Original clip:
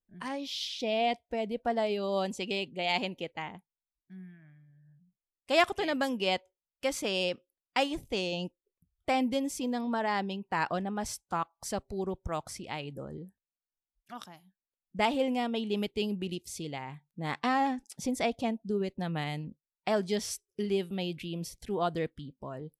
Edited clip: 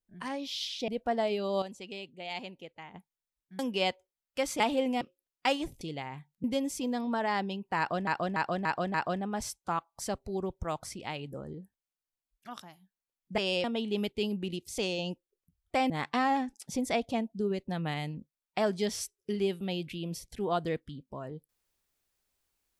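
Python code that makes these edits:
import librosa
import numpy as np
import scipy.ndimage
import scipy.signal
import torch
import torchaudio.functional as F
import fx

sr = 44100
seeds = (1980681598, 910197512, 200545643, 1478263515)

y = fx.edit(x, sr, fx.cut(start_s=0.88, length_s=0.59),
    fx.clip_gain(start_s=2.21, length_s=1.32, db=-9.0),
    fx.cut(start_s=4.18, length_s=1.87),
    fx.swap(start_s=7.06, length_s=0.26, other_s=15.02, other_length_s=0.41),
    fx.swap(start_s=8.12, length_s=1.12, other_s=16.57, other_length_s=0.63),
    fx.repeat(start_s=10.58, length_s=0.29, count=5), tone=tone)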